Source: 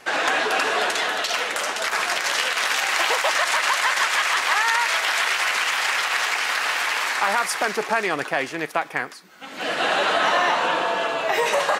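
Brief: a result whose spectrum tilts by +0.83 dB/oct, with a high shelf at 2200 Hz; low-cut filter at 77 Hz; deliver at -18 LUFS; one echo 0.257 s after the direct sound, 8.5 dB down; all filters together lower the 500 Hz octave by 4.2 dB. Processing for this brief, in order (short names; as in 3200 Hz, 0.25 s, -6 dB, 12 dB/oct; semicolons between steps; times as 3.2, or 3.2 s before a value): HPF 77 Hz; bell 500 Hz -6 dB; high shelf 2200 Hz +4 dB; echo 0.257 s -8.5 dB; gain +1 dB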